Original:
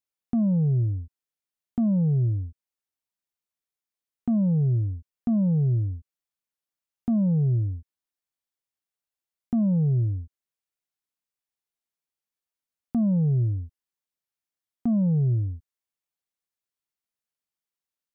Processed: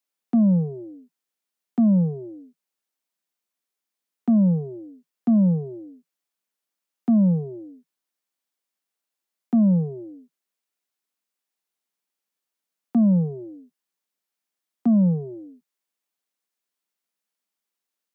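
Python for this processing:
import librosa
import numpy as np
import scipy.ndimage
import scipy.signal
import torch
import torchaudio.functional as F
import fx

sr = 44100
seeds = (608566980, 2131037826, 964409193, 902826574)

y = scipy.signal.sosfilt(scipy.signal.butter(12, 170.0, 'highpass', fs=sr, output='sos'), x)
y = F.gain(torch.from_numpy(y), 5.5).numpy()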